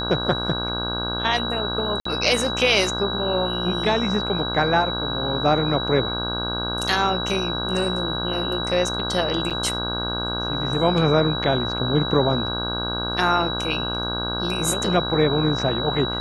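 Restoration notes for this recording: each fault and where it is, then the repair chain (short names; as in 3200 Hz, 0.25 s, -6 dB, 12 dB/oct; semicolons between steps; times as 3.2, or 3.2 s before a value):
buzz 60 Hz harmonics 27 -29 dBFS
tone 3900 Hz -27 dBFS
2–2.05 gap 54 ms
9.5–9.51 gap 6.9 ms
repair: de-hum 60 Hz, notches 27; notch 3900 Hz, Q 30; interpolate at 2, 54 ms; interpolate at 9.5, 6.9 ms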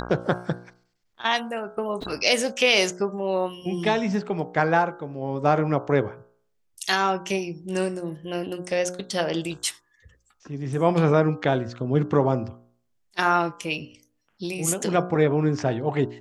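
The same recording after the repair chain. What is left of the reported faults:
none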